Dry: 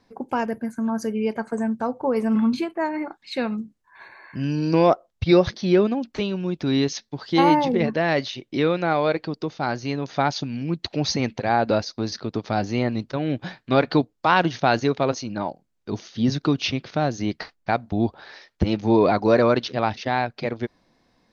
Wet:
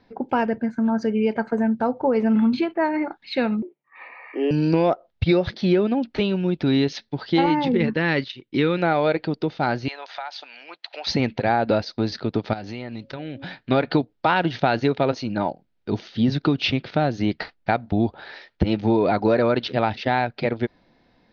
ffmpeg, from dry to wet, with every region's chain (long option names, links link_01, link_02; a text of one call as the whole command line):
ffmpeg -i in.wav -filter_complex "[0:a]asettb=1/sr,asplit=3[link_01][link_02][link_03];[link_01]atrim=end=3.624[link_04];[link_02]atrim=start=3.62:end=4.51,asetpts=PTS-STARTPTS,afade=type=in:duration=0.004:curve=qsin,afade=type=out:start_time=0.886:duration=0.004:curve=qsin,agate=range=-7dB:threshold=-58dB:ratio=16:release=100:detection=peak,afreqshift=140,highpass=frequency=220:width=0.5412,highpass=frequency=220:width=1.3066,equalizer=frequency=240:width_type=q:width=4:gain=-4,equalizer=frequency=570:width_type=q:width=4:gain=4,equalizer=frequency=920:width_type=q:width=4:gain=6,equalizer=frequency=1600:width_type=q:width=4:gain=-8,equalizer=frequency=2300:width_type=q:width=4:gain=6,lowpass=frequency=3000:width=0.5412,lowpass=frequency=3000:width=1.3066[link_05];[link_03]atrim=start=4.506[link_06];[link_04][link_05]acrossfade=duration=0.004:curve1=hsin:curve2=qsin[link_07];[link_07][link_06]acrossfade=duration=0.004:curve1=qsin:curve2=hsin,asettb=1/sr,asplit=3[link_08][link_09][link_10];[link_08]atrim=end=7.464[link_11];[link_09]atrim=start=7.46:end=8.78,asetpts=PTS-STARTPTS,afade=type=in:duration=0.004:curve=qsin,afade=type=out:start_time=1.316:duration=0.004:curve=qsin,agate=range=-10dB:threshold=-32dB:ratio=16:release=100:detection=peak,equalizer=frequency=670:width=3.1:gain=-14.5[link_12];[link_10]atrim=start=8.776[link_13];[link_11][link_12]acrossfade=duration=0.004:curve1=hsin:curve2=qsin[link_14];[link_14][link_13]acrossfade=duration=0.004:curve1=qsin:curve2=hsin,asettb=1/sr,asplit=3[link_15][link_16][link_17];[link_15]atrim=end=9.884[link_18];[link_16]atrim=start=9.88:end=11.07,asetpts=PTS-STARTPTS,afade=type=in:duration=0.004:curve=qsin,afade=type=out:start_time=1.186:duration=0.004:curve=qsin,highpass=frequency=690:width=0.5412,highpass=frequency=690:width=1.3066,acompressor=threshold=-32dB:ratio=6:attack=3.2:release=140:knee=1:detection=peak[link_19];[link_17]atrim=start=11.066[link_20];[link_18][link_19]acrossfade=duration=0.004:curve1=hsin:curve2=qsin[link_21];[link_21][link_20]acrossfade=duration=0.004:curve1=qsin:curve2=hsin,asettb=1/sr,asplit=3[link_22][link_23][link_24];[link_22]atrim=end=12.534[link_25];[link_23]atrim=start=12.53:end=13.57,asetpts=PTS-STARTPTS,afade=type=in:duration=0.004:curve=qsin,afade=type=out:start_time=1.036:duration=0.004:curve=qsin,tiltshelf=frequency=1300:gain=-3,bandreject=frequency=274.7:width_type=h:width=4,bandreject=frequency=549.4:width_type=h:width=4,acompressor=threshold=-33dB:ratio=5:attack=3.2:release=140:knee=1:detection=peak[link_26];[link_24]atrim=start=13.566[link_27];[link_25][link_26]acrossfade=duration=0.004:curve1=hsin:curve2=qsin[link_28];[link_28][link_27]acrossfade=duration=0.004:curve1=qsin:curve2=hsin,lowpass=frequency=4300:width=0.5412,lowpass=frequency=4300:width=1.3066,bandreject=frequency=1100:width=7.9,acompressor=threshold=-19dB:ratio=6,volume=4dB" out.wav